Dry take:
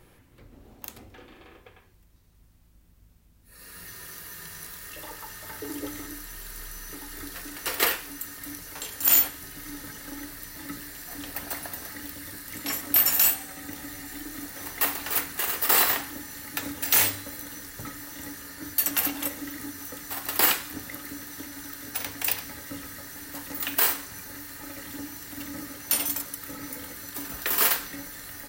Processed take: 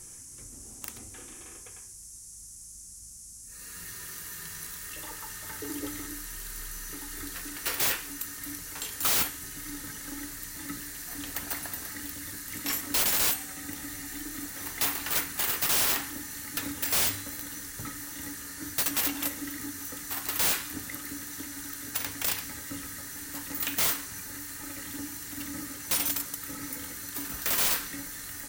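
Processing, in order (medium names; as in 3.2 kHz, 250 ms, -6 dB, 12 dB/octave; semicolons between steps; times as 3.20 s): peaking EQ 610 Hz -6 dB 1 oct; integer overflow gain 19.5 dB; band noise 5.7–11 kHz -47 dBFS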